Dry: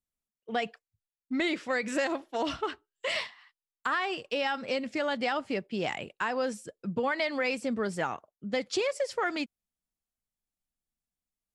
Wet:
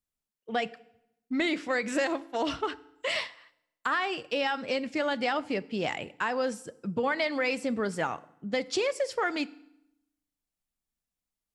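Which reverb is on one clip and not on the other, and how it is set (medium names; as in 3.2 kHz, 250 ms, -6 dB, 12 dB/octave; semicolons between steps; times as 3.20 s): FDN reverb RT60 0.81 s, low-frequency decay 1.25×, high-frequency decay 0.85×, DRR 17 dB; trim +1 dB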